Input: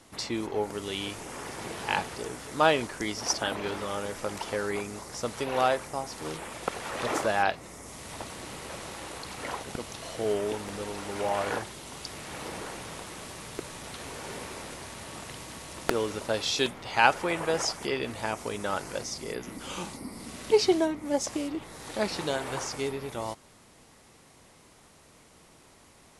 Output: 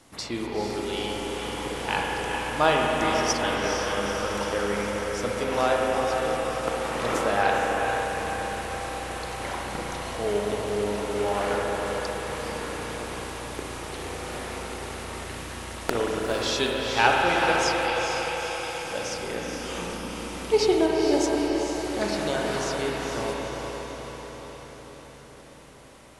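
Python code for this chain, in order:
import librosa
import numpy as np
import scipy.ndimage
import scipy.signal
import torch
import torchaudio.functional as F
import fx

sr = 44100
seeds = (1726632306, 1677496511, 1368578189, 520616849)

p1 = fx.brickwall_highpass(x, sr, low_hz=2100.0, at=(17.52, 18.84))
p2 = p1 + fx.echo_diffused(p1, sr, ms=457, feedback_pct=61, wet_db=-5.0, dry=0)
y = fx.rev_spring(p2, sr, rt60_s=3.6, pass_ms=(34, 58), chirp_ms=75, drr_db=-1.0)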